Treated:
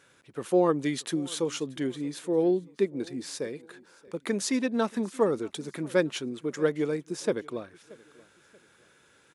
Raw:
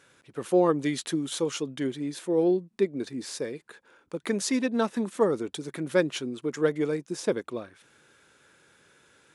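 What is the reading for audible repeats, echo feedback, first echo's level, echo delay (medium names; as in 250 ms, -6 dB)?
2, 36%, -23.0 dB, 630 ms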